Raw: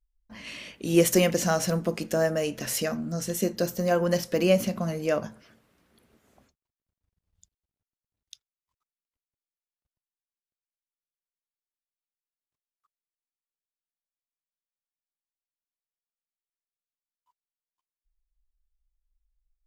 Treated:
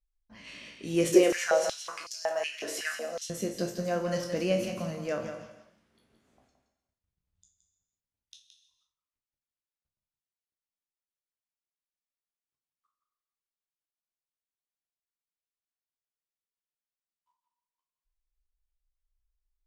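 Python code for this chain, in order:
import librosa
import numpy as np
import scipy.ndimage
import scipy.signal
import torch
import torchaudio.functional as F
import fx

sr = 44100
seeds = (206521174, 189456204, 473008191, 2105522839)

y = fx.spec_trails(x, sr, decay_s=0.32)
y = scipy.signal.sosfilt(scipy.signal.butter(2, 8800.0, 'lowpass', fs=sr, output='sos'), y)
y = y + 10.0 ** (-8.0 / 20.0) * np.pad(y, (int(170 * sr / 1000.0), 0))[:len(y)]
y = fx.rev_gated(y, sr, seeds[0], gate_ms=350, shape='flat', drr_db=10.5)
y = fx.filter_held_highpass(y, sr, hz=5.4, low_hz=380.0, high_hz=5000.0, at=(1.14, 3.3))
y = y * 10.0 ** (-7.5 / 20.0)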